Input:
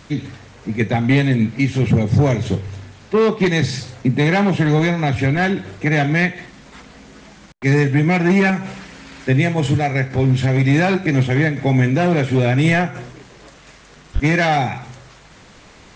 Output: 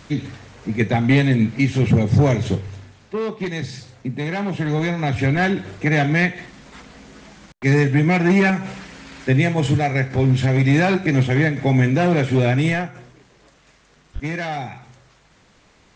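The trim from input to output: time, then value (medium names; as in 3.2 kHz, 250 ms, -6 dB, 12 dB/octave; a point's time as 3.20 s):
2.48 s -0.5 dB
3.19 s -9.5 dB
4.26 s -9.5 dB
5.30 s -1 dB
12.50 s -1 dB
13.00 s -10 dB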